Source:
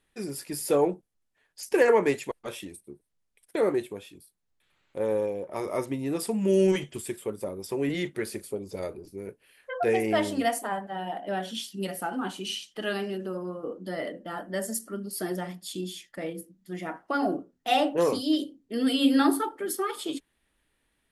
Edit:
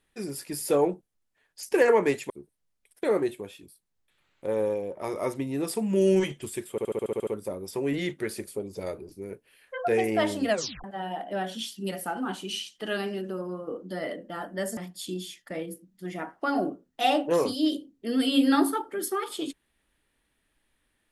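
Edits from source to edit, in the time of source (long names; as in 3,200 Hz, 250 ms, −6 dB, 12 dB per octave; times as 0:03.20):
0:02.30–0:02.82: remove
0:07.23: stutter 0.07 s, 9 plays
0:10.45: tape stop 0.35 s
0:14.73–0:15.44: remove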